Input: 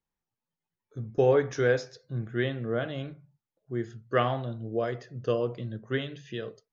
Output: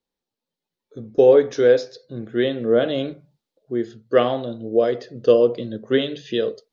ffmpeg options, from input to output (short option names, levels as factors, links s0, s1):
-af "equalizer=f=125:t=o:w=1:g=-5,equalizer=f=250:t=o:w=1:g=8,equalizer=f=500:t=o:w=1:g=11,equalizer=f=4000:t=o:w=1:g=12,dynaudnorm=f=420:g=3:m=2.51,volume=0.794"